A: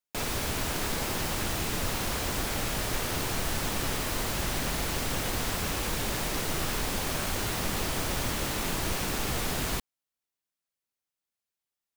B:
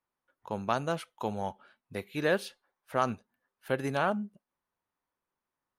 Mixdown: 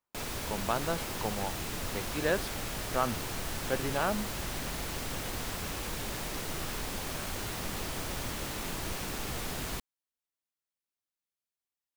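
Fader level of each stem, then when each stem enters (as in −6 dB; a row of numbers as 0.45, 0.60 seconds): −6.0, −2.0 decibels; 0.00, 0.00 seconds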